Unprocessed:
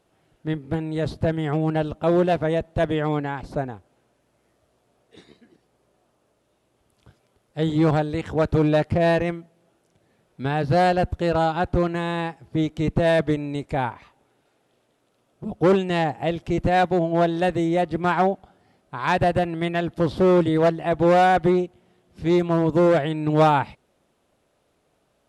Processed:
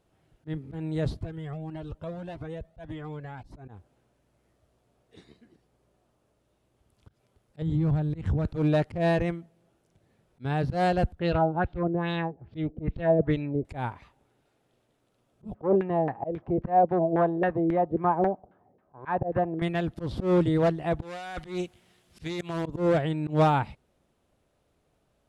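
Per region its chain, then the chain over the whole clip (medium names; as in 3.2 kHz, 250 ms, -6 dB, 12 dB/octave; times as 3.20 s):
1.19–3.68 s: compression 2.5:1, threshold -27 dBFS + Shepard-style flanger rising 1.7 Hz
7.62–8.45 s: tone controls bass +12 dB, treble -3 dB + compression 4:1, threshold -22 dBFS + tape noise reduction on one side only decoder only
11.19–13.65 s: peaking EQ 1 kHz -3 dB 1 oct + LFO low-pass sine 2.4 Hz 440–3900 Hz
15.54–19.62 s: high-pass 210 Hz 6 dB/octave + band-stop 1.4 kHz, Q 13 + LFO low-pass saw down 3.7 Hz 410–1800 Hz
21.02–22.66 s: tilt shelf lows -8.5 dB, about 1.2 kHz + compressor with a negative ratio -28 dBFS
whole clip: bass shelf 140 Hz +11 dB; slow attack 131 ms; trim -6 dB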